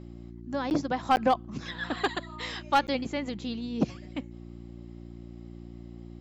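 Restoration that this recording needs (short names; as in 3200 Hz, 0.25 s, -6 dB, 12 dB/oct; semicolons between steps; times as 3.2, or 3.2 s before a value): clip repair -15 dBFS; de-hum 58.2 Hz, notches 6; interpolate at 0.7/1.16/2.87, 9.7 ms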